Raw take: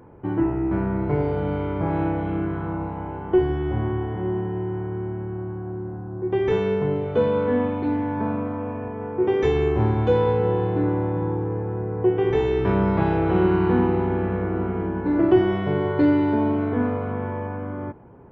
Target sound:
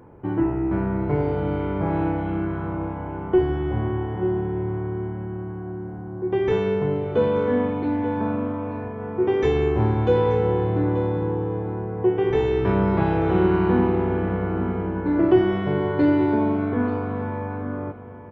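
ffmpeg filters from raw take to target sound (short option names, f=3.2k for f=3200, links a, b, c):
-af "aecho=1:1:884:0.211"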